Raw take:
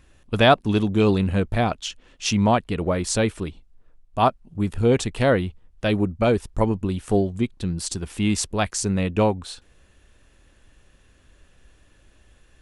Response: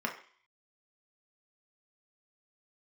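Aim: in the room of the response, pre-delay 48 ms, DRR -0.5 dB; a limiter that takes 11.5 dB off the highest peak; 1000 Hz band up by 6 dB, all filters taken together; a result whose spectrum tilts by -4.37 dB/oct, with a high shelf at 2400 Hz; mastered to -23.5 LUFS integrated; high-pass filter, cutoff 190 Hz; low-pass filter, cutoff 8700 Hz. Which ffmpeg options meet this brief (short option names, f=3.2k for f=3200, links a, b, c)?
-filter_complex "[0:a]highpass=190,lowpass=8.7k,equalizer=f=1k:t=o:g=7.5,highshelf=f=2.4k:g=5,alimiter=limit=-8dB:level=0:latency=1,asplit=2[a][b];[1:a]atrim=start_sample=2205,adelay=48[c];[b][c]afir=irnorm=-1:irlink=0,volume=-5.5dB[d];[a][d]amix=inputs=2:normalize=0,volume=-3dB"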